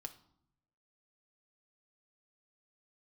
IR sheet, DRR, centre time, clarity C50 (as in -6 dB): 6.0 dB, 6 ms, 14.0 dB